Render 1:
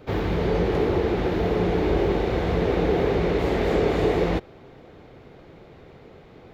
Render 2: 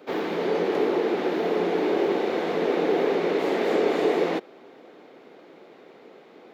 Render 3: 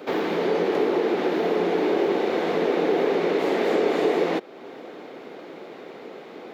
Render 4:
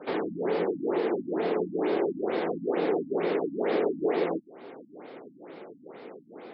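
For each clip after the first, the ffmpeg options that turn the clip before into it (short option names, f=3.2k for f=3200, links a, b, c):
-af "highpass=f=240:w=0.5412,highpass=f=240:w=1.3066"
-af "acompressor=threshold=-42dB:ratio=1.5,volume=9dB"
-af "afftfilt=real='re*lt(b*sr/1024,290*pow(5500/290,0.5+0.5*sin(2*PI*2.2*pts/sr)))':imag='im*lt(b*sr/1024,290*pow(5500/290,0.5+0.5*sin(2*PI*2.2*pts/sr)))':win_size=1024:overlap=0.75,volume=-4.5dB"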